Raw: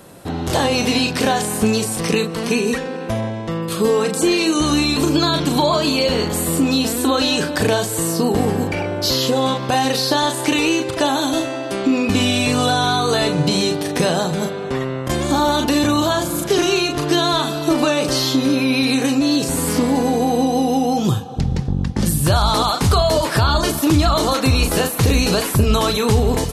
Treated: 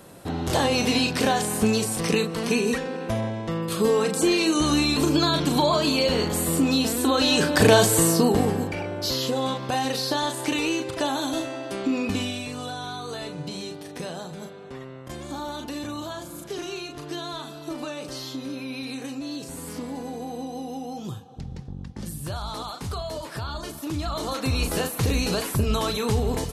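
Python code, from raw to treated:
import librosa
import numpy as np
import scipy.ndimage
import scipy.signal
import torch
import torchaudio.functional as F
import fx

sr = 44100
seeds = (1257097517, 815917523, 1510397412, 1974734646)

y = fx.gain(x, sr, db=fx.line((7.12, -4.5), (7.86, 3.5), (8.72, -8.0), (12.07, -8.0), (12.49, -16.5), (23.79, -16.5), (24.64, -8.0)))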